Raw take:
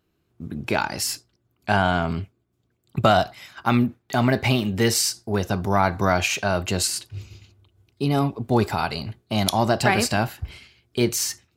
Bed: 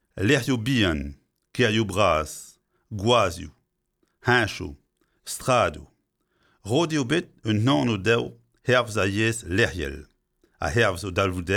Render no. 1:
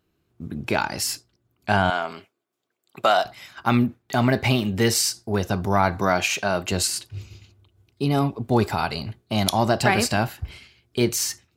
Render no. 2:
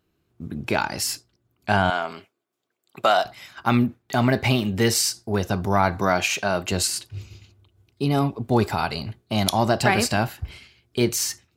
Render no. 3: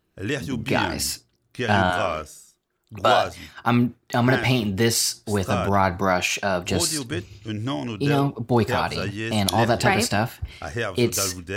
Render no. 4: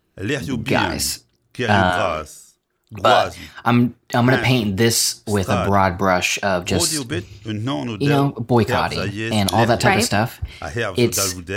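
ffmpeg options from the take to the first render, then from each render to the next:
-filter_complex "[0:a]asettb=1/sr,asplit=3[a][b][c];[a]atrim=end=1.904[d];[b]atrim=start=1.9:end=3.25,asetpts=PTS-STARTPTS,afade=t=in:d=0.004:c=qsin,afade=t=out:st=1.346:d=0.004:c=qsin,highpass=500[e];[c]atrim=start=3.246[f];[d][e]acrossfade=d=0.004:c1=hsin:c2=qsin[g];[g][f]acrossfade=d=0.004:c1=qsin:c2=hsin,asettb=1/sr,asplit=3[h][i][j];[h]atrim=end=5.994[k];[i]atrim=start=5.99:end=6.72,asetpts=PTS-STARTPTS,afade=t=in:d=0.004:c=qsin,afade=t=out:st=0.726:d=0.004:c=qsin,equalizer=f=72:w=1.5:g=-13.5[l];[j]atrim=start=6.716[m];[k][l]acrossfade=d=0.004:c1=hsin:c2=qsin[n];[n][m]acrossfade=d=0.004:c1=qsin:c2=hsin"
-af anull
-filter_complex "[1:a]volume=-6.5dB[a];[0:a][a]amix=inputs=2:normalize=0"
-af "volume=4dB,alimiter=limit=-1dB:level=0:latency=1"

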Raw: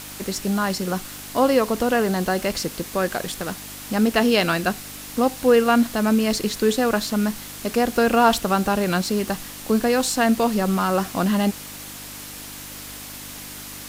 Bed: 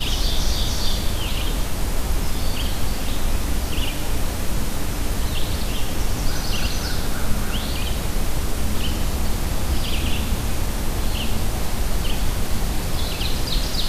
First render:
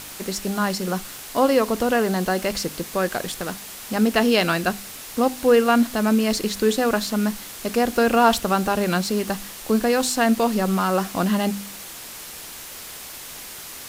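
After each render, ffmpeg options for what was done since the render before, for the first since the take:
-af "bandreject=f=50:t=h:w=4,bandreject=f=100:t=h:w=4,bandreject=f=150:t=h:w=4,bandreject=f=200:t=h:w=4,bandreject=f=250:t=h:w=4,bandreject=f=300:t=h:w=4"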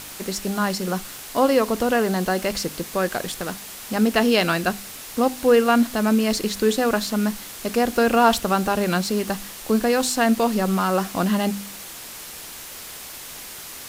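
-af anull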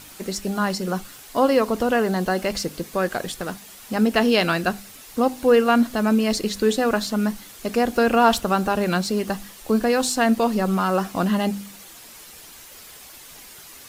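-af "afftdn=nr=8:nf=-38"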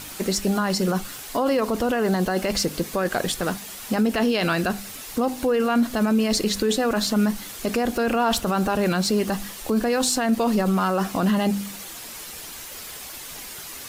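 -filter_complex "[0:a]asplit=2[a][b];[b]acompressor=threshold=-25dB:ratio=6,volume=0dB[c];[a][c]amix=inputs=2:normalize=0,alimiter=limit=-13dB:level=0:latency=1:release=13"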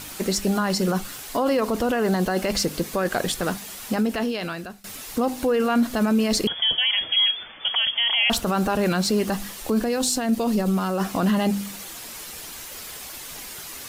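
-filter_complex "[0:a]asettb=1/sr,asplit=3[a][b][c];[a]atrim=end=6.474[d];[b]atrim=start=6.47:end=8.3,asetpts=PTS-STARTPTS,afade=t=in:d=0.004:c=qsin,afade=t=out:st=1.826:d=0.004:c=qsin,lowpass=f=3k:t=q:w=0.5098,lowpass=f=3k:t=q:w=0.6013,lowpass=f=3k:t=q:w=0.9,lowpass=f=3k:t=q:w=2.563,afreqshift=-3500[e];[c]atrim=start=8.296[f];[d][e]acrossfade=d=0.004:c1=hsin:c2=qsin[g];[g][f]acrossfade=d=0.004:c1=qsin:c2=hsin,asettb=1/sr,asplit=3[h][i][j];[h]atrim=end=9.844[k];[i]atrim=start=9.84:end=11,asetpts=PTS-STARTPTS,afade=t=in:d=0.004:c=qsin,afade=t=out:st=1.156:d=0.004:c=qsin,equalizer=f=1.3k:t=o:w=2.2:g=-6[l];[j]atrim=start=10.996[m];[k][l]acrossfade=d=0.004:c1=hsin:c2=qsin[n];[n][m]acrossfade=d=0.004:c1=qsin:c2=hsin,asplit=2[o][p];[o]atrim=end=4.84,asetpts=PTS-STARTPTS,afade=t=out:st=3.83:d=1.01:silence=0.0794328[q];[p]atrim=start=4.84,asetpts=PTS-STARTPTS,afade=t=in:d=0.004:c=hsin:silence=0.0794328[r];[q][r]concat=n=2:v=0:a=1"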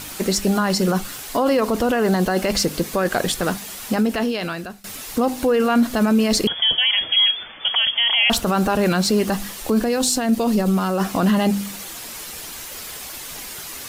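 -af "volume=3.5dB"

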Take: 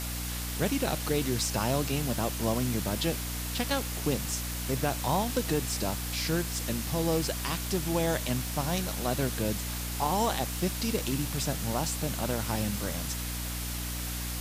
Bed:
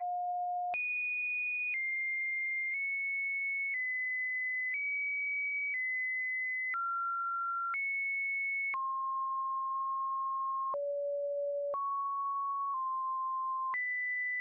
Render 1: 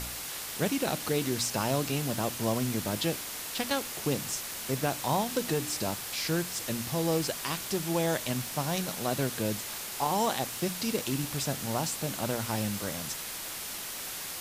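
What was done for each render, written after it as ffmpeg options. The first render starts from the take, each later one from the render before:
-af "bandreject=f=60:t=h:w=4,bandreject=f=120:t=h:w=4,bandreject=f=180:t=h:w=4,bandreject=f=240:t=h:w=4,bandreject=f=300:t=h:w=4"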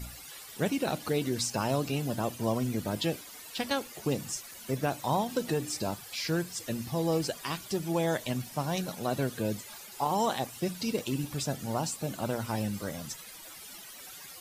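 -af "afftdn=nr=14:nf=-39"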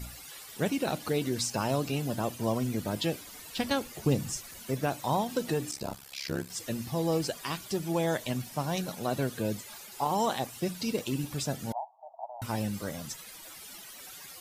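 -filter_complex "[0:a]asettb=1/sr,asplit=3[a][b][c];[a]atrim=end=3.214[d];[b]atrim=start=3.21:end=4.63,asetpts=PTS-STARTPTS,afade=t=in:d=0.004:c=qsin,afade=t=out:st=1.416:d=0.004:c=qsin,lowshelf=f=180:g=11[e];[c]atrim=start=4.626[f];[d][e]acrossfade=d=0.004:c1=hsin:c2=qsin[g];[g][f]acrossfade=d=0.004:c1=qsin:c2=hsin,asettb=1/sr,asplit=3[h][i][j];[h]atrim=end=5.714[k];[i]atrim=start=5.71:end=6.5,asetpts=PTS-STARTPTS,afade=t=in:d=0.004:c=qsin,afade=t=out:st=0.786:d=0.004:c=qsin,tremolo=f=68:d=0.974[l];[j]atrim=start=6.496[m];[k][l]acrossfade=d=0.004:c1=hsin:c2=qsin[n];[n][m]acrossfade=d=0.004:c1=qsin:c2=hsin,asettb=1/sr,asplit=3[o][p][q];[o]atrim=end=11.724[r];[p]atrim=start=11.72:end=12.42,asetpts=PTS-STARTPTS,afade=t=in:d=0.004:c=qsin,afade=t=out:st=0.696:d=0.004:c=qsin,asuperpass=centerf=780:order=8:qfactor=2.6[s];[q]atrim=start=12.416[t];[r][s]acrossfade=d=0.004:c1=hsin:c2=qsin[u];[u][t]acrossfade=d=0.004:c1=qsin:c2=hsin"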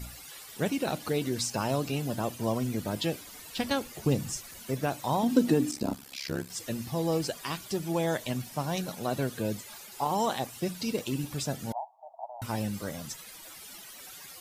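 -filter_complex "[0:a]asettb=1/sr,asplit=3[a][b][c];[a]atrim=end=5.234[d];[b]atrim=start=5.23:end=6.16,asetpts=PTS-STARTPTS,afade=t=in:d=0.004:c=qsin,afade=t=out:st=0.926:d=0.004:c=qsin,equalizer=f=260:t=o:w=0.84:g=14[e];[c]atrim=start=6.156[f];[d][e]acrossfade=d=0.004:c1=hsin:c2=qsin[g];[g][f]acrossfade=d=0.004:c1=qsin:c2=hsin"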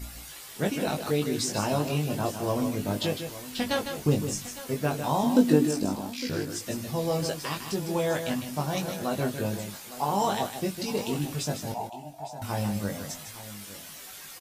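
-filter_complex "[0:a]asplit=2[a][b];[b]adelay=20,volume=-3dB[c];[a][c]amix=inputs=2:normalize=0,aecho=1:1:154|858:0.398|0.178"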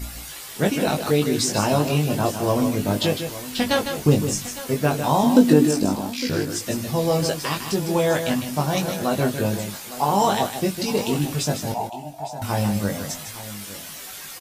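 -af "volume=7dB,alimiter=limit=-3dB:level=0:latency=1"

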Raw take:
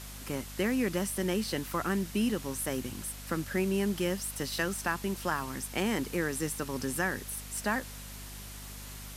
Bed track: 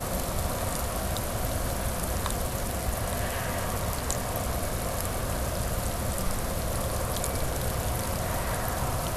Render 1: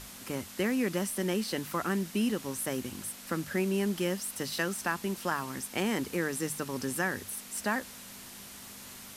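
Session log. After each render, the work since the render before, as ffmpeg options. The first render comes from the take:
-af "bandreject=f=50:t=h:w=6,bandreject=f=100:t=h:w=6,bandreject=f=150:t=h:w=6"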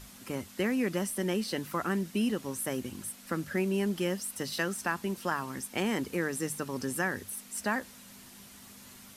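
-af "afftdn=nr=6:nf=-47"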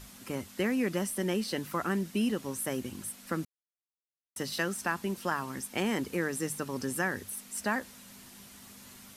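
-filter_complex "[0:a]asplit=3[a][b][c];[a]atrim=end=3.45,asetpts=PTS-STARTPTS,afade=t=out:st=3.446:d=0.004:c=hsin[d];[b]atrim=start=3.45:end=4.36,asetpts=PTS-STARTPTS,volume=0[e];[c]atrim=start=4.36,asetpts=PTS-STARTPTS,afade=t=in:d=0.004:c=hsin[f];[d][e][f]concat=n=3:v=0:a=1"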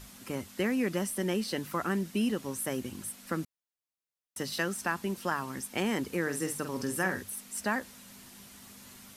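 -filter_complex "[0:a]asettb=1/sr,asplit=3[a][b][c];[a]atrim=end=6.224[d];[b]atrim=start=6.22:end=7.22,asetpts=PTS-STARTPTS,afade=t=in:d=0.004:c=qsin,afade=t=out:st=0.996:d=0.004:c=qsin,asplit=2[e][f];[f]adelay=48,volume=-8dB[g];[e][g]amix=inputs=2:normalize=0,atrim=end_sample=44100[h];[c]atrim=start=7.216[i];[d][h]acrossfade=d=0.004:c1=hsin:c2=qsin[j];[j][i]acrossfade=d=0.004:c1=qsin:c2=hsin"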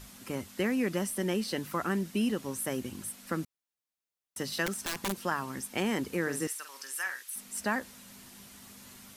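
-filter_complex "[0:a]asettb=1/sr,asplit=3[a][b][c];[a]atrim=end=4.664[d];[b]atrim=start=4.66:end=5.18,asetpts=PTS-STARTPTS,afade=t=in:d=0.004:c=qsin,afade=t=out:st=0.516:d=0.004:c=qsin,aeval=exprs='(mod(20*val(0)+1,2)-1)/20':c=same[e];[c]atrim=start=5.176[f];[d][e]acrossfade=d=0.004:c1=hsin:c2=qsin[g];[g][f]acrossfade=d=0.004:c1=qsin:c2=hsin,asettb=1/sr,asplit=3[h][i][j];[h]atrim=end=6.474[k];[i]atrim=start=6.47:end=7.36,asetpts=PTS-STARTPTS,afade=t=in:d=0.004:c=qsin,afade=t=out:st=0.886:d=0.004:c=qsin,highpass=1.5k[l];[j]atrim=start=7.356[m];[k][l]acrossfade=d=0.004:c1=hsin:c2=qsin[n];[n][m]acrossfade=d=0.004:c1=qsin:c2=hsin"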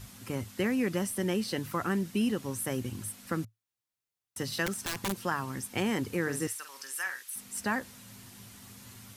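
-af "equalizer=f=110:t=o:w=0.43:g=14.5,bandreject=f=620:w=17"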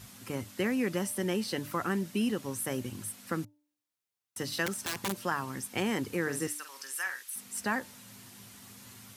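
-af "highpass=f=140:p=1,bandreject=f=295.9:t=h:w=4,bandreject=f=591.8:t=h:w=4,bandreject=f=887.7:t=h:w=4"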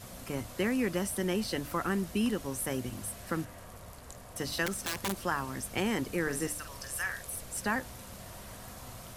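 -filter_complex "[1:a]volume=-18.5dB[a];[0:a][a]amix=inputs=2:normalize=0"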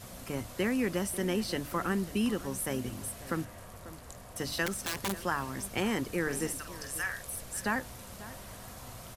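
-filter_complex "[0:a]asplit=2[a][b];[b]adelay=542.3,volume=-16dB,highshelf=f=4k:g=-12.2[c];[a][c]amix=inputs=2:normalize=0"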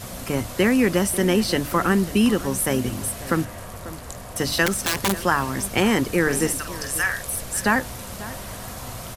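-af "volume=11.5dB"

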